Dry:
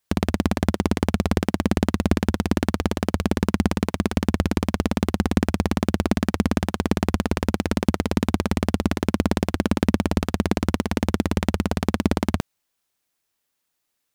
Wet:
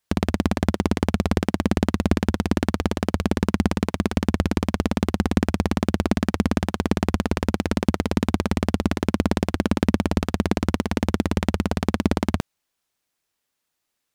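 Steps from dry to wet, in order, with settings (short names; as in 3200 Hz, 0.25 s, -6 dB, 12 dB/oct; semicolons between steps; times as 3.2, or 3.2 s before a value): high shelf 11000 Hz -5.5 dB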